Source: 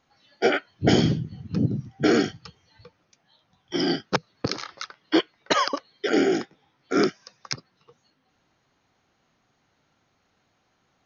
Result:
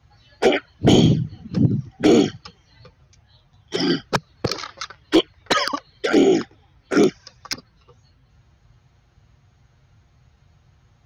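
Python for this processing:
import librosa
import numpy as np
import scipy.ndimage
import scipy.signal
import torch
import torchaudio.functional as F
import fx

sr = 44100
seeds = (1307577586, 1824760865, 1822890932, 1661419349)

y = np.clip(10.0 ** (13.0 / 20.0) * x, -1.0, 1.0) / 10.0 ** (13.0 / 20.0)
y = fx.env_flanger(y, sr, rest_ms=8.6, full_db=-17.0)
y = fx.dmg_noise_band(y, sr, seeds[0], low_hz=43.0, high_hz=140.0, level_db=-63.0)
y = F.gain(torch.from_numpy(y), 7.0).numpy()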